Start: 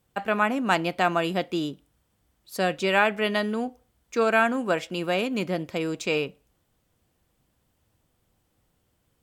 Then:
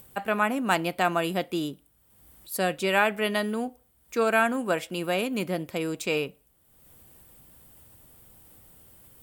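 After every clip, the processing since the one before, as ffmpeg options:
-af "acompressor=mode=upward:threshold=-44dB:ratio=2.5,aexciter=amount=3.9:drive=4.3:freq=8.4k,volume=-1.5dB"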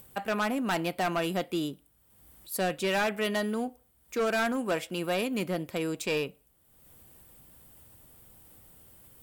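-af "volume=22dB,asoftclip=hard,volume=-22dB,volume=-1.5dB"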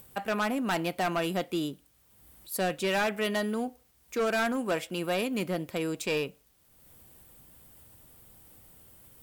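-af "acrusher=bits=10:mix=0:aa=0.000001"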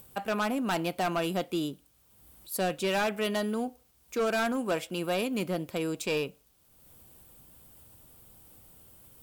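-af "equalizer=f=1.9k:t=o:w=0.42:g=-4.5"

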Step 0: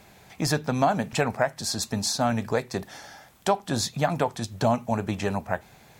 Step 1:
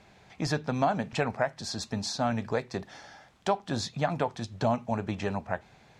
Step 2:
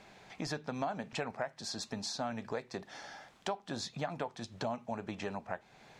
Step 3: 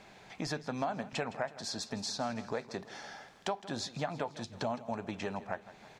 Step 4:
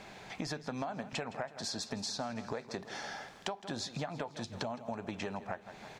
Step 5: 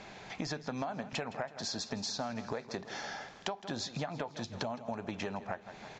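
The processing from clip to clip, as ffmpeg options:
-af "lowpass=5.4k,volume=-4dB"
-af "equalizer=f=73:w=0.71:g=-10.5,acompressor=threshold=-43dB:ratio=2,volume=1.5dB"
-af "aecho=1:1:163|326|489|652|815:0.15|0.0778|0.0405|0.021|0.0109,volume=1.5dB"
-af "acompressor=threshold=-41dB:ratio=4,volume=5dB"
-af "aresample=16000,aresample=44100,volume=1dB"

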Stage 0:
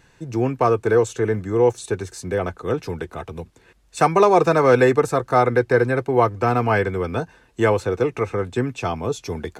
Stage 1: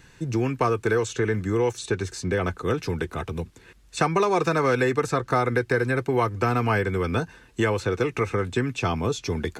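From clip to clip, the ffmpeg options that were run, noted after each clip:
-filter_complex "[0:a]equalizer=f=680:t=o:w=1.2:g=-6.5,acrossover=split=1100|6900[a][b][c];[a]acompressor=threshold=-25dB:ratio=4[d];[b]acompressor=threshold=-31dB:ratio=4[e];[c]acompressor=threshold=-55dB:ratio=4[f];[d][e][f]amix=inputs=3:normalize=0,volume=4dB"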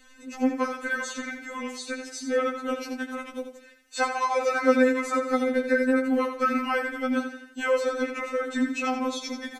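-filter_complex "[0:a]asplit=2[a][b];[b]aecho=0:1:84|168|252|336:0.376|0.15|0.0601|0.0241[c];[a][c]amix=inputs=2:normalize=0,afftfilt=real='re*3.46*eq(mod(b,12),0)':imag='im*3.46*eq(mod(b,12),0)':win_size=2048:overlap=0.75"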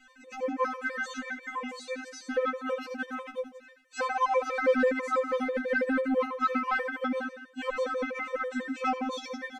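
-filter_complex "[0:a]asplit=2[a][b];[b]highpass=f=720:p=1,volume=16dB,asoftclip=type=tanh:threshold=-8dB[c];[a][c]amix=inputs=2:normalize=0,lowpass=f=1.5k:p=1,volume=-6dB,afftfilt=real='re*gt(sin(2*PI*6.1*pts/sr)*(1-2*mod(floor(b*sr/1024/320),2)),0)':imag='im*gt(sin(2*PI*6.1*pts/sr)*(1-2*mod(floor(b*sr/1024/320),2)),0)':win_size=1024:overlap=0.75,volume=-4.5dB"

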